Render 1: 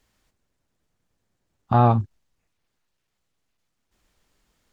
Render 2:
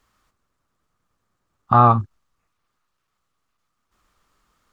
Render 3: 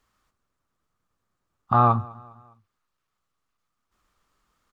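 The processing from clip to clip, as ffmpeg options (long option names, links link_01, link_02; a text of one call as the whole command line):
ffmpeg -i in.wav -af "equalizer=frequency=1200:width_type=o:width=0.49:gain=14" out.wav
ffmpeg -i in.wav -af "aecho=1:1:204|408|612:0.0708|0.0333|0.0156,volume=-5dB" out.wav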